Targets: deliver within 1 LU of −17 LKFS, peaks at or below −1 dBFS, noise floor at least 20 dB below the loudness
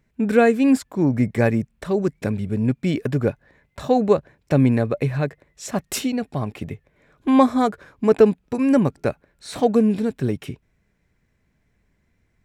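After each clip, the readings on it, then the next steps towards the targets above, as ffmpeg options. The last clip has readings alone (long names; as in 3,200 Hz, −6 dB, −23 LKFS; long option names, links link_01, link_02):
integrated loudness −21.0 LKFS; sample peak −3.0 dBFS; target loudness −17.0 LKFS
→ -af "volume=4dB,alimiter=limit=-1dB:level=0:latency=1"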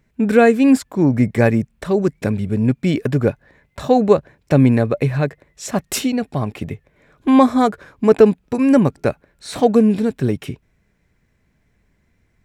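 integrated loudness −17.0 LKFS; sample peak −1.0 dBFS; background noise floor −64 dBFS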